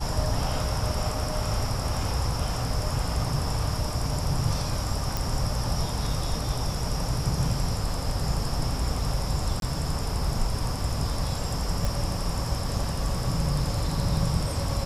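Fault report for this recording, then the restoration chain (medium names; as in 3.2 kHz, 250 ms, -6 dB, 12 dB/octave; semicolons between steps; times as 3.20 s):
5.17 s: pop
9.60–9.62 s: dropout 22 ms
11.85 s: pop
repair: de-click; interpolate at 9.60 s, 22 ms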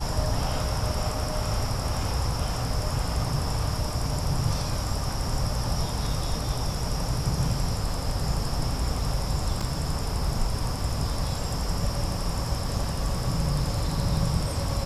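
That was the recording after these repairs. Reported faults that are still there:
nothing left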